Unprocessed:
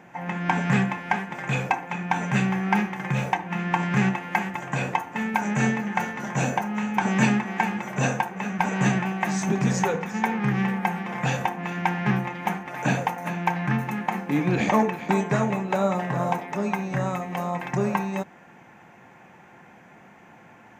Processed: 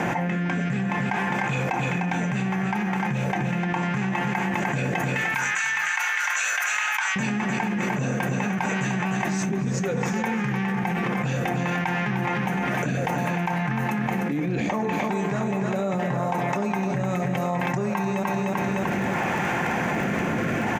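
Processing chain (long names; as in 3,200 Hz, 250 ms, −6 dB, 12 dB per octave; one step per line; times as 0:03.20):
0:05.12–0:07.16: high-pass filter 1,200 Hz 24 dB per octave
surface crackle 26 per second −52 dBFS
rotating-speaker cabinet horn 0.65 Hz
repeating echo 301 ms, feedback 31%, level −10 dB
convolution reverb RT60 1.0 s, pre-delay 58 ms, DRR 19.5 dB
envelope flattener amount 100%
level −7.5 dB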